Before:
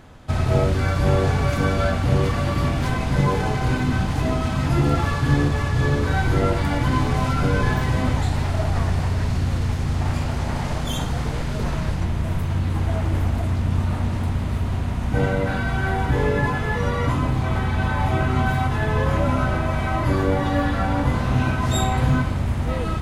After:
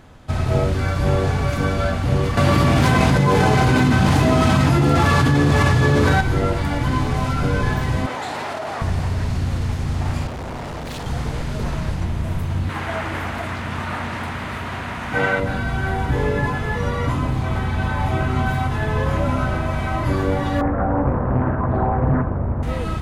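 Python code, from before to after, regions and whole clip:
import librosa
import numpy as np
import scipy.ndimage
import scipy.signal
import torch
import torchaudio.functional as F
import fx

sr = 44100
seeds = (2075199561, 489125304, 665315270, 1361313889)

y = fx.chain(x, sr, fx.highpass(hz=90.0, slope=12),
    fx.env_flatten(amount_pct=100), at=(2.37, 6.21))
y = fx.chain(y, sr, fx.highpass(hz=470.0, slope=12),
    fx.high_shelf(hz=3400.0, db=-8.0),
    fx.env_flatten(amount_pct=100), at=(8.06, 8.82))
y = fx.chain(y, sr, fx.peak_eq(hz=600.0, db=5.5, octaves=2.4),
    fx.tube_stage(drive_db=26.0, bias=0.35),
    fx.doppler_dist(depth_ms=0.72), at=(10.27, 11.06))
y = fx.chain(y, sr, fx.highpass(hz=250.0, slope=6),
    fx.peak_eq(hz=1700.0, db=11.0, octaves=2.1), at=(12.69, 15.4))
y = fx.chain(y, sr, fx.lowpass(hz=1400.0, slope=24),
    fx.peak_eq(hz=490.0, db=6.0, octaves=1.4),
    fx.doppler_dist(depth_ms=0.54), at=(20.61, 22.63))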